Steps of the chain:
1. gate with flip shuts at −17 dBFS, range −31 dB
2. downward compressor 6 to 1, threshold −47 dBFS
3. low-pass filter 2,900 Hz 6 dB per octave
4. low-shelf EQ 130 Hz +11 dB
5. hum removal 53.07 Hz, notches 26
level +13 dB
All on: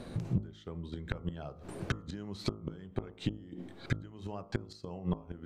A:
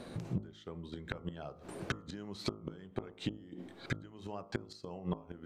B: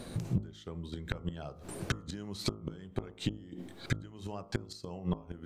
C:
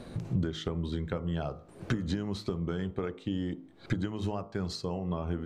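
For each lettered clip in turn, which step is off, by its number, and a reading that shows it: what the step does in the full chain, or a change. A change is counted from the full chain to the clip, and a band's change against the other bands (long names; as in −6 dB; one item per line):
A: 4, 125 Hz band −5.5 dB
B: 3, 8 kHz band +8.0 dB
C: 1, change in momentary loudness spread −5 LU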